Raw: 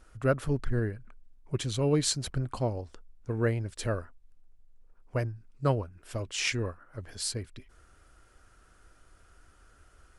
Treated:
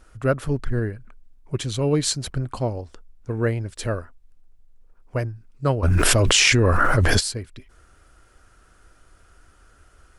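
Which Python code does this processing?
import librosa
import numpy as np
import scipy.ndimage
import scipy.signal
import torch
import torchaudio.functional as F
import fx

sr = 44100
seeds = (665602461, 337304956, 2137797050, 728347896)

y = fx.env_flatten(x, sr, amount_pct=100, at=(5.82, 7.19), fade=0.02)
y = y * librosa.db_to_amplitude(5.0)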